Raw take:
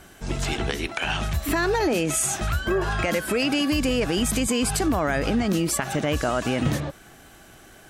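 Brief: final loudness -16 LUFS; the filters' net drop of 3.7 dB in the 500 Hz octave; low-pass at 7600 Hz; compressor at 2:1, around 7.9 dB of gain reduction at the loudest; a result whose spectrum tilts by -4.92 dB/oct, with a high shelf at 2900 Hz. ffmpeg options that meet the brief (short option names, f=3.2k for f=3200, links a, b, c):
-af "lowpass=7.6k,equalizer=f=500:t=o:g=-4.5,highshelf=f=2.9k:g=-6.5,acompressor=threshold=-35dB:ratio=2,volume=17.5dB"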